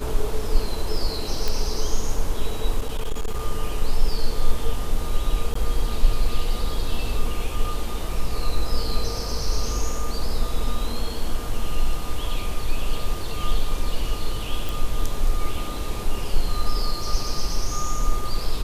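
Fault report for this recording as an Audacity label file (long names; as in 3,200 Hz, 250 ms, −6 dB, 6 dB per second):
1.480000	1.480000	click −10 dBFS
2.790000	3.410000	clipping −19.5 dBFS
5.540000	5.550000	drop-out 14 ms
14.690000	14.690000	click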